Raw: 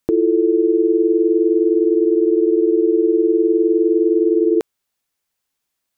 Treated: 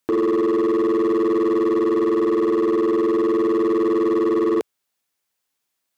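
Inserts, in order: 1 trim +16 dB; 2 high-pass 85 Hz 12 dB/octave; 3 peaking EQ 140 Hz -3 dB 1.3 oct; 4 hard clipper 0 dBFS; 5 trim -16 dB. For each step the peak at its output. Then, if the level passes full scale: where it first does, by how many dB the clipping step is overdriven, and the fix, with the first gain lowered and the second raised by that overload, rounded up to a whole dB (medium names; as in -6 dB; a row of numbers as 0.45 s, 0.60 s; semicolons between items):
+9.0 dBFS, +9.0 dBFS, +8.5 dBFS, 0.0 dBFS, -16.0 dBFS; step 1, 8.5 dB; step 1 +7 dB, step 5 -7 dB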